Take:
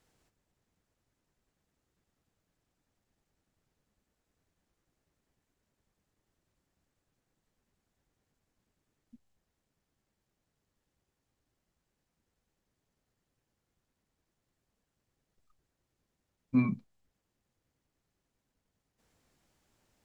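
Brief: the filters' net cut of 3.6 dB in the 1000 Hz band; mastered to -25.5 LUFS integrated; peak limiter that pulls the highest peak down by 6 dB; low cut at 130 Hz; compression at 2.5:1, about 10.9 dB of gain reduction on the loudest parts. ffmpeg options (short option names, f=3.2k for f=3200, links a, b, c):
-af "highpass=130,equalizer=f=1k:t=o:g=-4,acompressor=threshold=-39dB:ratio=2.5,volume=22dB,alimiter=limit=-11.5dB:level=0:latency=1"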